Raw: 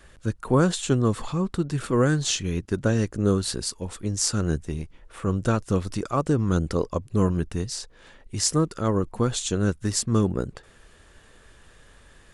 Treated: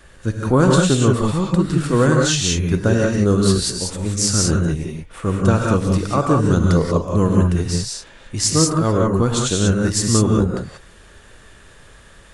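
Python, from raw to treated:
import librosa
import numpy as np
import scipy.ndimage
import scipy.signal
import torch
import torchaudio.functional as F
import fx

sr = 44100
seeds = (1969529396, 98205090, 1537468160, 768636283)

y = fx.rev_gated(x, sr, seeds[0], gate_ms=210, shape='rising', drr_db=-0.5)
y = y * librosa.db_to_amplitude(4.5)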